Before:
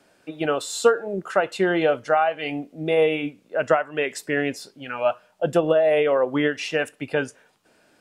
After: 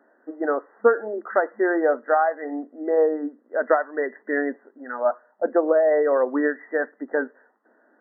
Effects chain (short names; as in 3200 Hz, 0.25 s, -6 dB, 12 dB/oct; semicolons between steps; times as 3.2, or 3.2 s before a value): FFT band-pass 210–2000 Hz